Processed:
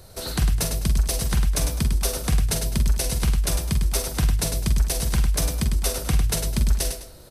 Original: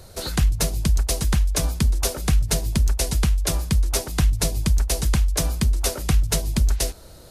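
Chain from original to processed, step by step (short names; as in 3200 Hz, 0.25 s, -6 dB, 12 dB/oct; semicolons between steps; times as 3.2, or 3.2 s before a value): high shelf 11000 Hz +4.5 dB; notch 6900 Hz, Q 13; on a send: tapped delay 44/52/102/206 ms -9/-13/-6.5/-16 dB; on the sum: gain -3 dB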